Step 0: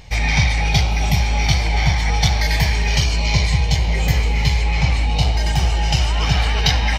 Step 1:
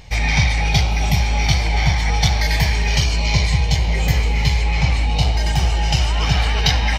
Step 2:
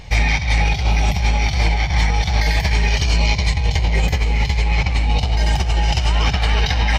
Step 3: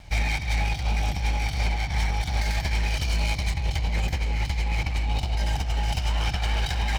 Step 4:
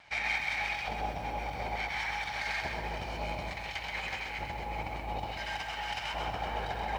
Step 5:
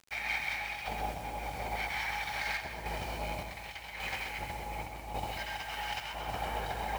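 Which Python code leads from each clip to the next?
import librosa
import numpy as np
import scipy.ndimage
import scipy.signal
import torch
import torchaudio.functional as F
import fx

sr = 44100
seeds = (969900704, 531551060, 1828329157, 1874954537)

y1 = x
y2 = fx.high_shelf(y1, sr, hz=6900.0, db=-6.5)
y2 = fx.over_compress(y2, sr, threshold_db=-18.0, ratio=-0.5)
y2 = y2 * 10.0 ** (2.5 / 20.0)
y3 = fx.lower_of_two(y2, sr, delay_ms=1.3)
y3 = y3 * 10.0 ** (-8.0 / 20.0)
y4 = fx.filter_lfo_bandpass(y3, sr, shape='square', hz=0.57, low_hz=630.0, high_hz=1600.0, q=0.94)
y4 = fx.echo_crushed(y4, sr, ms=129, feedback_pct=35, bits=10, wet_db=-4)
y5 = fx.quant_dither(y4, sr, seeds[0], bits=8, dither='none')
y5 = fx.tremolo_random(y5, sr, seeds[1], hz=3.5, depth_pct=55)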